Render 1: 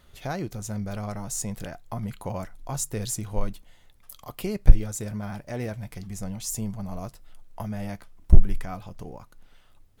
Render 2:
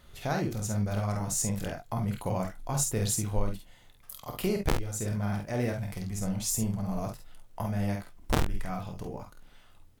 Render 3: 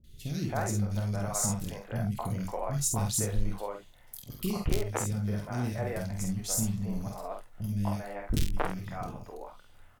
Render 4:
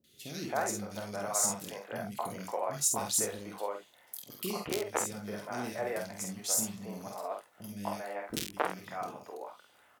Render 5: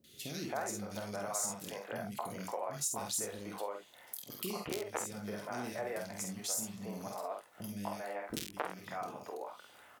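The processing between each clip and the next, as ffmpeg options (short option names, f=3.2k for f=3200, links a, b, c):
-af "aeval=exprs='(mod(2.51*val(0)+1,2)-1)/2.51':c=same,aecho=1:1:27|49|69:0.299|0.562|0.251,alimiter=limit=-16dB:level=0:latency=1:release=383"
-filter_complex "[0:a]acrossover=split=350|2500[a][b][c];[c]adelay=40[d];[b]adelay=270[e];[a][e][d]amix=inputs=3:normalize=0"
-af "highpass=340,volume=1.5dB"
-af "acompressor=threshold=-48dB:ratio=2,volume=5dB"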